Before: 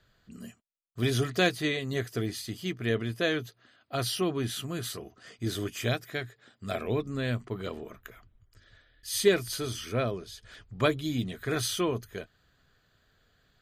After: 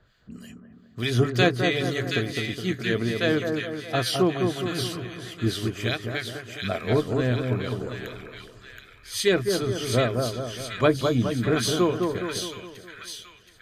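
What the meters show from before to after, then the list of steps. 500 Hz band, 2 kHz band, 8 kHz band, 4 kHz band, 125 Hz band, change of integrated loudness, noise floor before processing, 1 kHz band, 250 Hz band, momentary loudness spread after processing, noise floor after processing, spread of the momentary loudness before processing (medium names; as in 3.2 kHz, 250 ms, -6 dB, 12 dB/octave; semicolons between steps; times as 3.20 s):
+6.0 dB, +5.5 dB, +2.5 dB, +5.0 dB, +6.5 dB, +5.0 dB, -69 dBFS, +6.5 dB, +6.5 dB, 18 LU, -52 dBFS, 20 LU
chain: treble shelf 8 kHz -9.5 dB; harmonic tremolo 3.3 Hz, depth 70%, crossover 1.5 kHz; on a send: two-band feedback delay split 1.5 kHz, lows 208 ms, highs 724 ms, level -4 dB; on the sum: trim +7.5 dB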